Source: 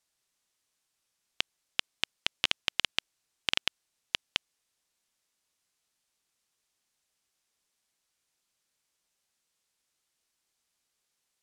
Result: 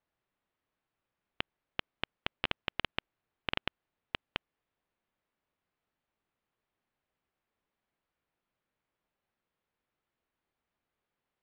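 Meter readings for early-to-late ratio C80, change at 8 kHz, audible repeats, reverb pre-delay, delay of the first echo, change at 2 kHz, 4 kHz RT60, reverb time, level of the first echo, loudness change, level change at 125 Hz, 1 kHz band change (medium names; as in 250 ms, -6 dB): no reverb, under -30 dB, no echo, no reverb, no echo, -4.5 dB, no reverb, no reverb, no echo, -7.0 dB, +4.5 dB, +1.0 dB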